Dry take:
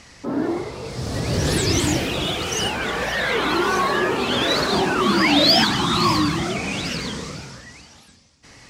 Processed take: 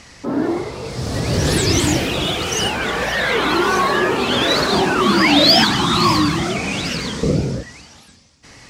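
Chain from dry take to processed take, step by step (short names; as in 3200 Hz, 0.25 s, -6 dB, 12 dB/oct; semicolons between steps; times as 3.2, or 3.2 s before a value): 7.23–7.63 resonant low shelf 710 Hz +13.5 dB, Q 1.5; gain +3.5 dB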